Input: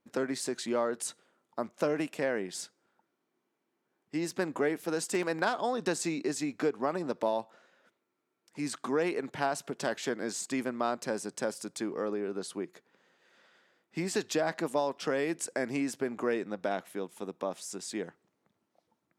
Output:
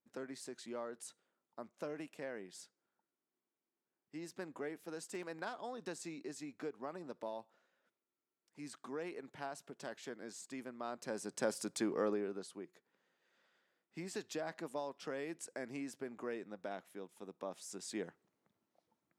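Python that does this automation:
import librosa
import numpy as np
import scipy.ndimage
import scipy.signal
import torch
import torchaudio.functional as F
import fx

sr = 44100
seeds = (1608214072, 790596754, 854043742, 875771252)

y = fx.gain(x, sr, db=fx.line((10.78, -14.0), (11.54, -1.5), (12.08, -1.5), (12.52, -12.0), (17.19, -12.0), (17.98, -5.5)))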